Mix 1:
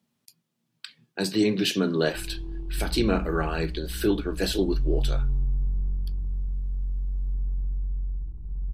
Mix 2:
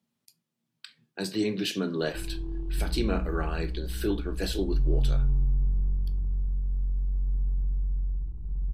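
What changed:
speech -6.5 dB; reverb: on, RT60 0.30 s

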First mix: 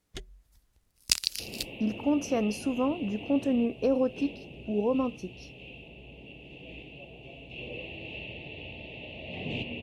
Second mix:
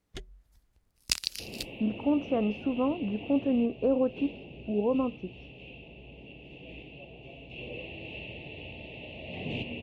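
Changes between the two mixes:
speech: add low-pass 1.5 kHz 12 dB/octave; master: add treble shelf 4.1 kHz -5.5 dB

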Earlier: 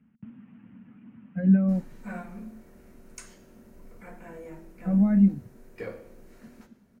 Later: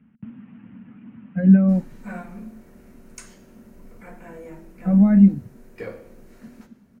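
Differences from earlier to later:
speech +6.5 dB; background +3.0 dB

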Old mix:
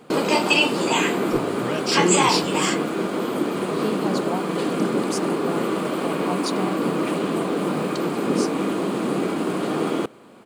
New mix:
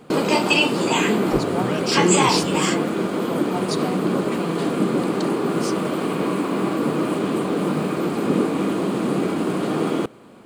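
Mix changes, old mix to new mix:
speech: entry -2.75 s; master: add bass shelf 150 Hz +8.5 dB

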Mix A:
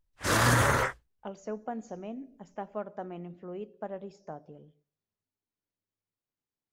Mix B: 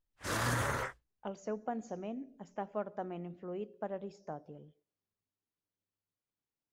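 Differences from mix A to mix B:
background -9.5 dB; reverb: off

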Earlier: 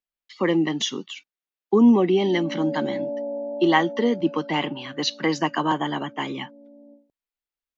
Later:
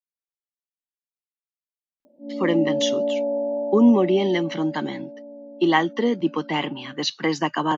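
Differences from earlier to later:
speech: entry +2.00 s; background +5.5 dB

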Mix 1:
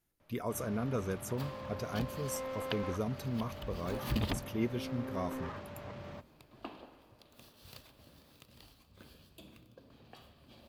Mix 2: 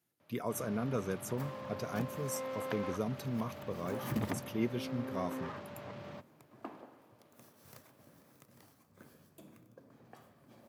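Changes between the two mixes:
second sound: add high-order bell 3.5 kHz -12 dB 1.1 oct; master: add high-pass 110 Hz 24 dB/octave

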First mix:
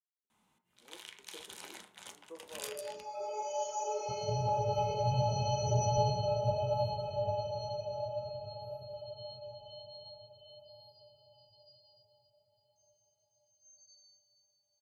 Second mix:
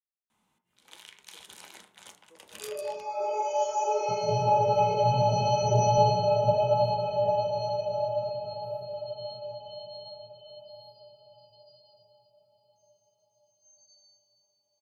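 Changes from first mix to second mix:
speech -10.5 dB; second sound: send +11.0 dB

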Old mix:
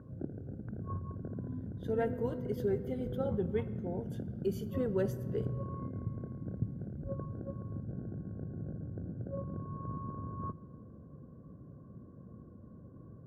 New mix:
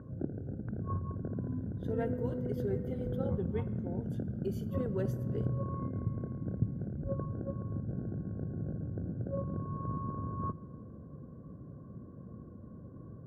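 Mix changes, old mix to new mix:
speech -4.0 dB; background +3.5 dB

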